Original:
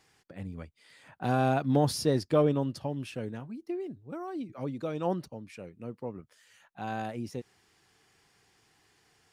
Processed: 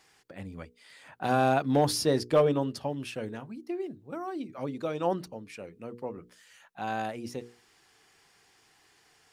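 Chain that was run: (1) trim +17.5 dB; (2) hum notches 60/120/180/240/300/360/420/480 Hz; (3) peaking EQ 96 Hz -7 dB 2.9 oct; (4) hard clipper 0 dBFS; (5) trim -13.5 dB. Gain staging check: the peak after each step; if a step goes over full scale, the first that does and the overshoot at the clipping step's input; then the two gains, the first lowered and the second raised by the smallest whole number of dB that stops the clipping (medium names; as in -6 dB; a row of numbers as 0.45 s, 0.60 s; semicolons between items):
+5.0 dBFS, +4.0 dBFS, +3.0 dBFS, 0.0 dBFS, -13.5 dBFS; step 1, 3.0 dB; step 1 +14.5 dB, step 5 -10.5 dB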